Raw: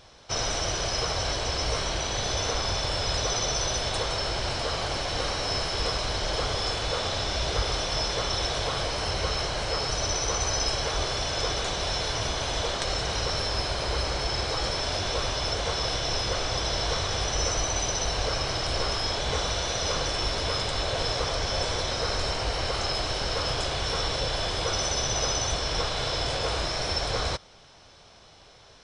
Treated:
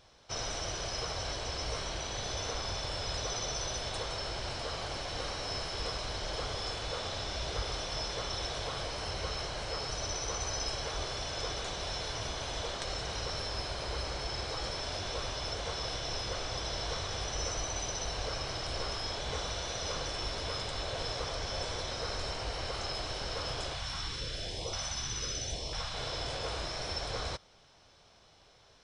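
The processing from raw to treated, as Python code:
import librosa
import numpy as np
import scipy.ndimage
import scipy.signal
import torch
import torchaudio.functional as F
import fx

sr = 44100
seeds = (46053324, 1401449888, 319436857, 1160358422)

y = fx.filter_lfo_notch(x, sr, shape='saw_up', hz=1.0, low_hz=320.0, high_hz=1700.0, q=0.73, at=(23.73, 25.94))
y = y * librosa.db_to_amplitude(-8.5)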